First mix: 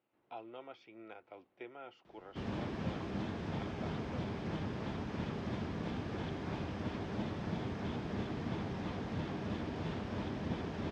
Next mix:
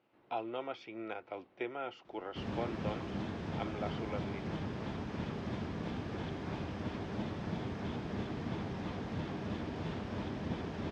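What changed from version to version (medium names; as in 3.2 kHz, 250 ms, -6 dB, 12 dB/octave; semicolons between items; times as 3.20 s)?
speech +9.5 dB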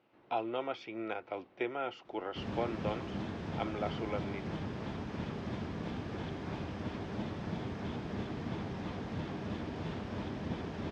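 speech +3.5 dB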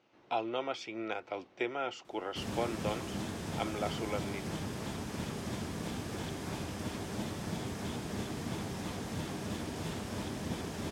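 master: remove distance through air 230 m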